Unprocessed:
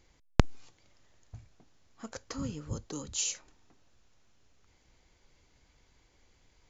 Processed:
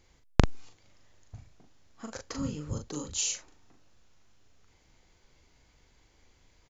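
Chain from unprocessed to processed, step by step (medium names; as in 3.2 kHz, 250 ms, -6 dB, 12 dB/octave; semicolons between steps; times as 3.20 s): doubling 40 ms -5 dB; trim +1 dB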